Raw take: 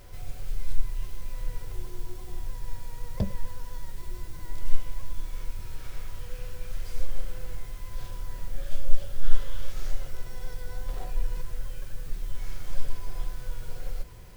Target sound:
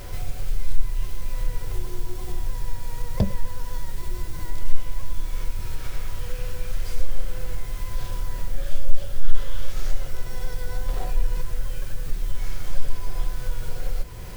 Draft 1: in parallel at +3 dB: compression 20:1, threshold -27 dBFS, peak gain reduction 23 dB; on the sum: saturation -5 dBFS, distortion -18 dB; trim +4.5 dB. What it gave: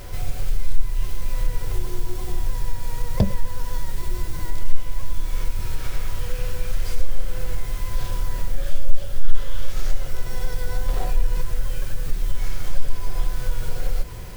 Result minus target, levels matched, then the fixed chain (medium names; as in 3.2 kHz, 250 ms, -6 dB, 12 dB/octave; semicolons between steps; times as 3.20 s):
compression: peak gain reduction -9.5 dB
in parallel at +3 dB: compression 20:1, threshold -37 dBFS, peak gain reduction 32.5 dB; on the sum: saturation -5 dBFS, distortion -18 dB; trim +4.5 dB